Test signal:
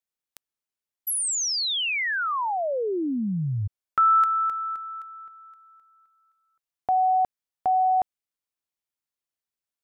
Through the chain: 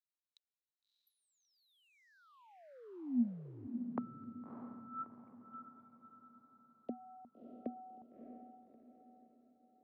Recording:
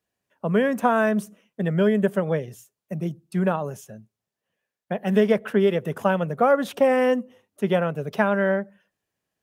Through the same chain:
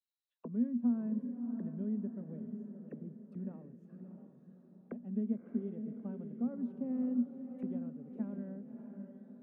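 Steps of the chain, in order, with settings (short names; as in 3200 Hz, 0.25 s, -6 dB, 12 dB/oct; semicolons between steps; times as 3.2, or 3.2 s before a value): low shelf 94 Hz +8.5 dB; auto-wah 240–4000 Hz, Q 18, down, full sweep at -25.5 dBFS; on a send: diffused feedback echo 0.623 s, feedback 46%, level -7 dB; on the sum: gain -1 dB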